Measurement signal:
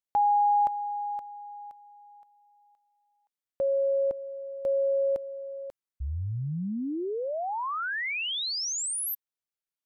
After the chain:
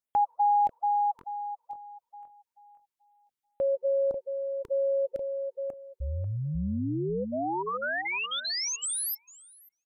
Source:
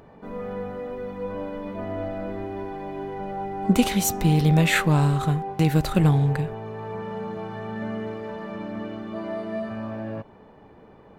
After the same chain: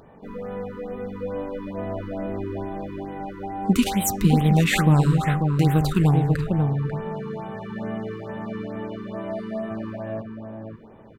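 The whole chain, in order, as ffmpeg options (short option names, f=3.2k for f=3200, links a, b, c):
-filter_complex "[0:a]asplit=2[a][b];[b]adelay=542,lowpass=f=950:p=1,volume=-3.5dB,asplit=2[c][d];[d]adelay=542,lowpass=f=950:p=1,volume=0.15,asplit=2[e][f];[f]adelay=542,lowpass=f=950:p=1,volume=0.15[g];[a][c][e][g]amix=inputs=4:normalize=0,afftfilt=real='re*(1-between(b*sr/1024,630*pow(5800/630,0.5+0.5*sin(2*PI*2.3*pts/sr))/1.41,630*pow(5800/630,0.5+0.5*sin(2*PI*2.3*pts/sr))*1.41))':imag='im*(1-between(b*sr/1024,630*pow(5800/630,0.5+0.5*sin(2*PI*2.3*pts/sr))/1.41,630*pow(5800/630,0.5+0.5*sin(2*PI*2.3*pts/sr))*1.41))':win_size=1024:overlap=0.75"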